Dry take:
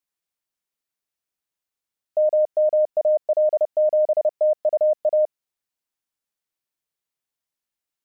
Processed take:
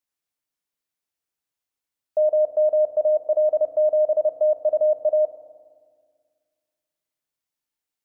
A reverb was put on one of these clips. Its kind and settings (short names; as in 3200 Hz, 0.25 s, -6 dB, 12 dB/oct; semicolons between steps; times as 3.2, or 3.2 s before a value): FDN reverb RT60 1.8 s, low-frequency decay 1.55×, high-frequency decay 0.8×, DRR 7 dB; gain -1 dB